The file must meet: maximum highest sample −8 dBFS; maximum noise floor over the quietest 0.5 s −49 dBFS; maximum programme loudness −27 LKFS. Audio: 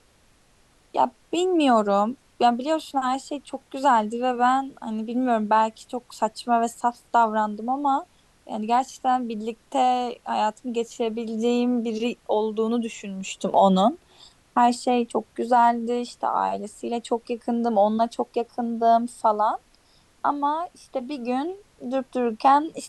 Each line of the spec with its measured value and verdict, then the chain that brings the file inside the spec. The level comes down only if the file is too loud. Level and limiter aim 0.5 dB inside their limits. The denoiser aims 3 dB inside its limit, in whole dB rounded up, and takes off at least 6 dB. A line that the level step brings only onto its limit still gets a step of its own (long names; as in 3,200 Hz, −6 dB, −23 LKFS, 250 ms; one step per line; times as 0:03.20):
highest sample −6.5 dBFS: out of spec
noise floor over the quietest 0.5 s −59 dBFS: in spec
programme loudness −24.0 LKFS: out of spec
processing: level −3.5 dB